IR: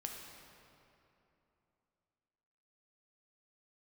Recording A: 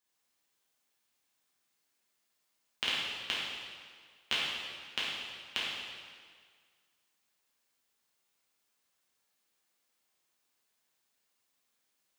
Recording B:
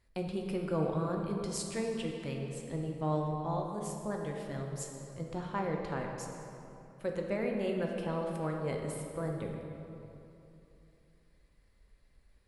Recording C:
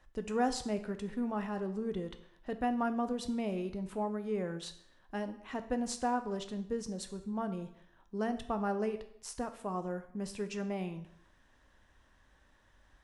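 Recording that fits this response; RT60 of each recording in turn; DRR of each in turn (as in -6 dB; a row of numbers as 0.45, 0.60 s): B; 1.8, 3.0, 0.70 s; -8.0, 0.5, 8.0 dB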